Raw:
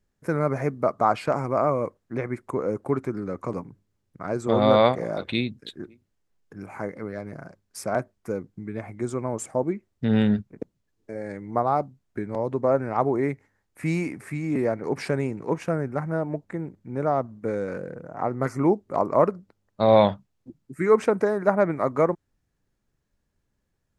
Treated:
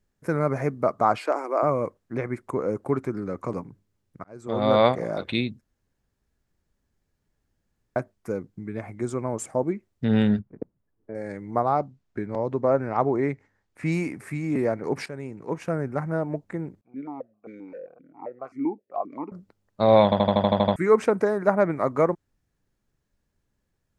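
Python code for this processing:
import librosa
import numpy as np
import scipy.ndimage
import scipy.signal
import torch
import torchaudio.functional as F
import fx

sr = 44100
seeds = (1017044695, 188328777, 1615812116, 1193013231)

y = fx.ellip_highpass(x, sr, hz=300.0, order=4, stop_db=50, at=(1.18, 1.63))
y = fx.lowpass(y, sr, hz=1400.0, slope=12, at=(10.39, 11.15))
y = fx.lowpass(y, sr, hz=6500.0, slope=12, at=(11.72, 13.92))
y = fx.vowel_held(y, sr, hz=7.6, at=(16.81, 19.32))
y = fx.edit(y, sr, fx.fade_in_span(start_s=4.24, length_s=0.61),
    fx.room_tone_fill(start_s=5.61, length_s=2.35),
    fx.fade_in_from(start_s=15.06, length_s=0.82, floor_db=-14.5),
    fx.stutter_over(start_s=20.04, slice_s=0.08, count=9), tone=tone)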